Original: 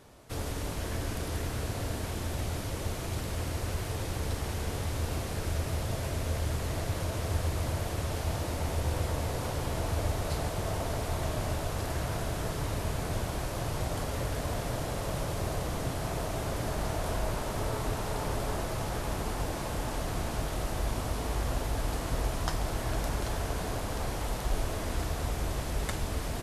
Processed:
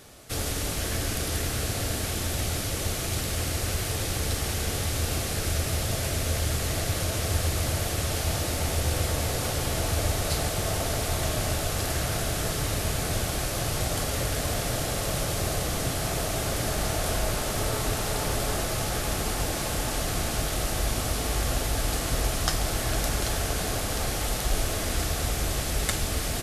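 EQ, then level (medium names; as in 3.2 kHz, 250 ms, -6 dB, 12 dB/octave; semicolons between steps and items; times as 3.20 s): treble shelf 2.2 kHz +9 dB; band-stop 970 Hz, Q 6.7; +3.5 dB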